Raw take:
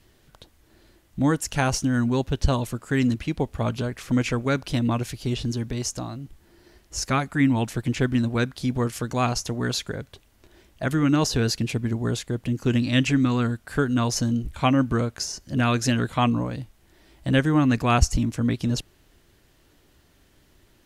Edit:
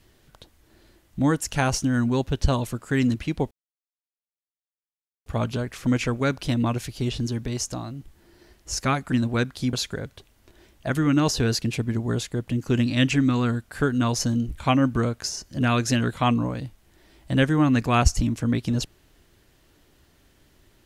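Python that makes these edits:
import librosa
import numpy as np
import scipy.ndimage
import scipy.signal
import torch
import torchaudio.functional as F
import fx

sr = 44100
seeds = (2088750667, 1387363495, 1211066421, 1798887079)

y = fx.edit(x, sr, fx.insert_silence(at_s=3.51, length_s=1.75),
    fx.cut(start_s=7.37, length_s=0.76),
    fx.cut(start_s=8.74, length_s=0.95), tone=tone)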